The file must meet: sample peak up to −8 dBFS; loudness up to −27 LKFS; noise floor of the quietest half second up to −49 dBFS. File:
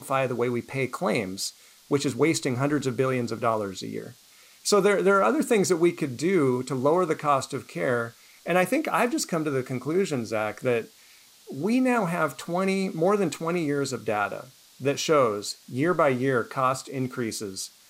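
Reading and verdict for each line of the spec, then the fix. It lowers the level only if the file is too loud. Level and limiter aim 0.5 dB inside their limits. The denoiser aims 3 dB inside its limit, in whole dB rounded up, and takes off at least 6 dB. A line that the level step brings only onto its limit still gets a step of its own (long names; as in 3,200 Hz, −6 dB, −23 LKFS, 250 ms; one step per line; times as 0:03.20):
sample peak −9.5 dBFS: in spec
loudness −25.5 LKFS: out of spec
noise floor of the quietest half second −54 dBFS: in spec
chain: level −2 dB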